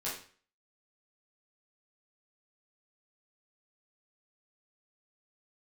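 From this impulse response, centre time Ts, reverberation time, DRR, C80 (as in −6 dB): 38 ms, 0.45 s, −8.5 dB, 9.5 dB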